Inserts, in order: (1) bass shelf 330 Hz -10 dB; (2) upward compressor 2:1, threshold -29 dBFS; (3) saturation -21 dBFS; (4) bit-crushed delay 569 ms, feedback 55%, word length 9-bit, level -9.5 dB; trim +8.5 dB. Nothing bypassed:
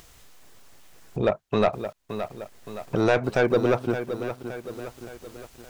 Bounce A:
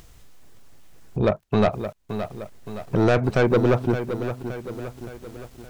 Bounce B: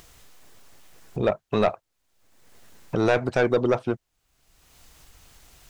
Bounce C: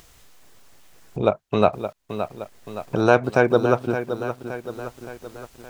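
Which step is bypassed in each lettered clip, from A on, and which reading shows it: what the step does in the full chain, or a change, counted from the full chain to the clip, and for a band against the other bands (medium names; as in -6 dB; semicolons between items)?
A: 1, 125 Hz band +6.5 dB; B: 4, loudness change +1.5 LU; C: 3, distortion -9 dB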